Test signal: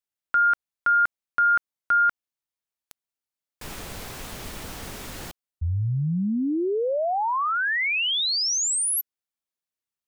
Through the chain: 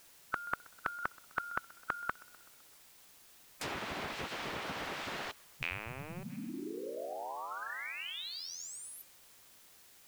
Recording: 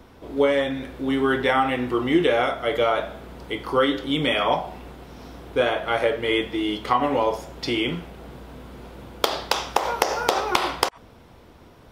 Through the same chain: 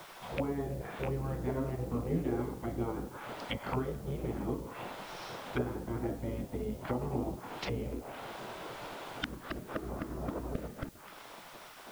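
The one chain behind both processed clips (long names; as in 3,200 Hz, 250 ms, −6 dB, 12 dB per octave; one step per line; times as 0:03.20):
loose part that buzzes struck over −29 dBFS, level −22 dBFS
on a send: tape delay 128 ms, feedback 63%, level −23 dB, low-pass 2,000 Hz
on the sum: gate on every frequency bin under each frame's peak −10 dB weak
treble cut that deepens with the level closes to 400 Hz, closed at −29 dBFS
in parallel at −1 dB: downward compressor 5 to 1, threshold −49 dBFS
on the sum: bit-depth reduction 10 bits, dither triangular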